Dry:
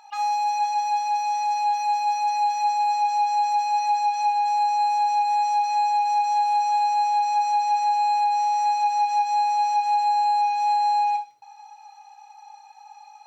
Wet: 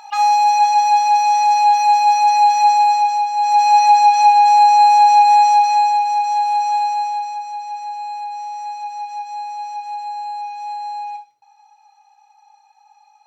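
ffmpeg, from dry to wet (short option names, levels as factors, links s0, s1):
-af "volume=10.6,afade=t=out:st=2.74:d=0.59:silence=0.354813,afade=t=in:st=3.33:d=0.35:silence=0.298538,afade=t=out:st=5.32:d=0.76:silence=0.421697,afade=t=out:st=6.75:d=0.67:silence=0.316228"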